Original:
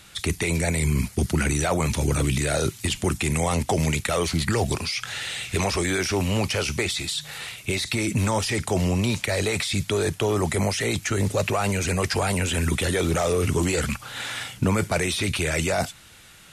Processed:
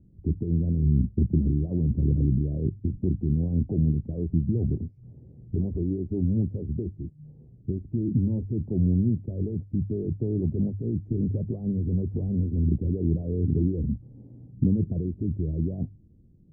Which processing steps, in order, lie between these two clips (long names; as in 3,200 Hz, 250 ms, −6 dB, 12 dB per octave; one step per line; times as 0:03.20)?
inverse Chebyshev low-pass filter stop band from 1,400 Hz, stop band 70 dB
mains-hum notches 50/100 Hz
level +1.5 dB